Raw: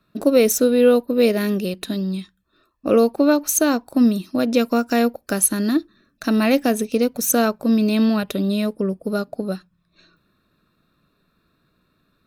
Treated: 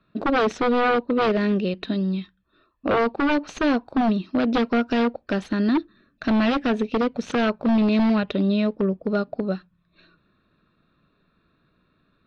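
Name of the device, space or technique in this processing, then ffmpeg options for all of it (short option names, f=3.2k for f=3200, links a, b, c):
synthesiser wavefolder: -af "aeval=exprs='0.188*(abs(mod(val(0)/0.188+3,4)-2)-1)':c=same,lowpass=f=3.8k:w=0.5412,lowpass=f=3.8k:w=1.3066"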